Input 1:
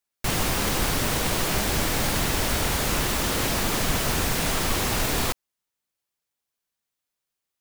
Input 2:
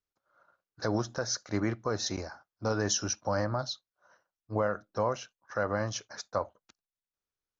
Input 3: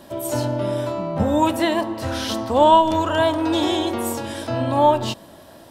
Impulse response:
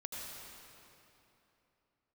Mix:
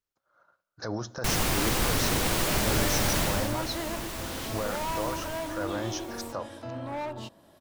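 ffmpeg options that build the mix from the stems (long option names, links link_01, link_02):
-filter_complex "[0:a]adelay=1000,volume=-2dB,afade=type=out:start_time=3.2:duration=0.33:silence=0.316228,afade=type=out:start_time=4.97:duration=0.79:silence=0.251189[link_01];[1:a]alimiter=level_in=1dB:limit=-24dB:level=0:latency=1:release=15,volume=-1dB,volume=0.5dB,asplit=2[link_02][link_03];[link_03]volume=-18.5dB[link_04];[2:a]asoftclip=type=hard:threshold=-17.5dB,adynamicequalizer=threshold=0.0126:dfrequency=2300:dqfactor=0.7:tfrequency=2300:tqfactor=0.7:attack=5:release=100:ratio=0.375:range=2:mode=cutabove:tftype=highshelf,adelay=2150,volume=-13.5dB[link_05];[3:a]atrim=start_sample=2205[link_06];[link_04][link_06]afir=irnorm=-1:irlink=0[link_07];[link_01][link_02][link_05][link_07]amix=inputs=4:normalize=0"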